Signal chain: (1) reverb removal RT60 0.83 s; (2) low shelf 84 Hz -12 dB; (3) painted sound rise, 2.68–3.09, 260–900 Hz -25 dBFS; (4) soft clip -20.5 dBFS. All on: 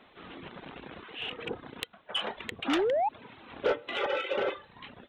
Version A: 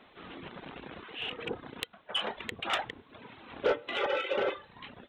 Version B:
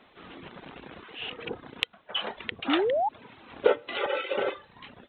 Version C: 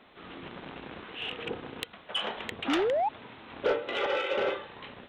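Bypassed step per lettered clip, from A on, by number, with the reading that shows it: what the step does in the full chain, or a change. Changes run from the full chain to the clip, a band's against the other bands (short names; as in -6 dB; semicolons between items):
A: 3, 250 Hz band -7.0 dB; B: 4, distortion -10 dB; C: 1, momentary loudness spread change -2 LU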